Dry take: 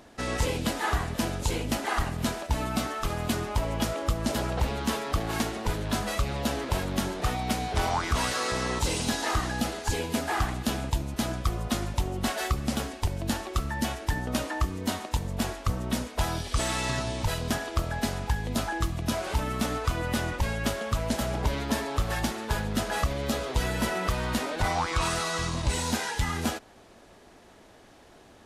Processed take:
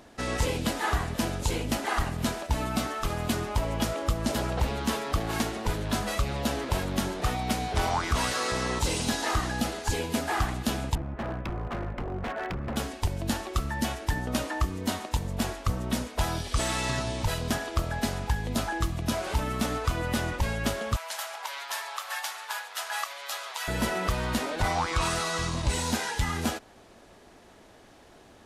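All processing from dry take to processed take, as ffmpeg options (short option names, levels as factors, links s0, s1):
-filter_complex "[0:a]asettb=1/sr,asplit=3[s0][s1][s2];[s0]atrim=end=10.954[s3];[s1]atrim=start=10.95:end=12.76,asetpts=PTS-STARTPTS,afade=t=in:d=0.004:c=qsin,afade=t=out:st=1.806:d=0.004:c=qsin,lowpass=f=1900:w=0.5412,lowpass=f=1900:w=1.3066,aeval=exprs='0.0473*(abs(mod(val(0)/0.0473+3,4)-2)-1)':c=same[s4];[s2]atrim=start=12.756[s5];[s3][s4]acrossfade=d=0.004:c1=hsin:c2=qsin[s6];[s6][s5]acrossfade=d=0.004:c1=qsin:c2=hsin,asettb=1/sr,asplit=3[s7][s8][s9];[s7]atrim=end=20.964[s10];[s8]atrim=start=20.96:end=23.68,asetpts=PTS-STARTPTS,afade=t=in:d=0.004:c=qsin,afade=t=out:st=2.716:d=0.004:c=qsin,highpass=f=840:w=0.5412,highpass=f=840:w=1.3066,equalizer=f=12000:t=o:w=0.21:g=3[s11];[s9]atrim=start=23.676[s12];[s10][s11]acrossfade=d=0.004:c1=hsin:c2=qsin[s13];[s13][s12]acrossfade=d=0.004:c1=qsin:c2=hsin"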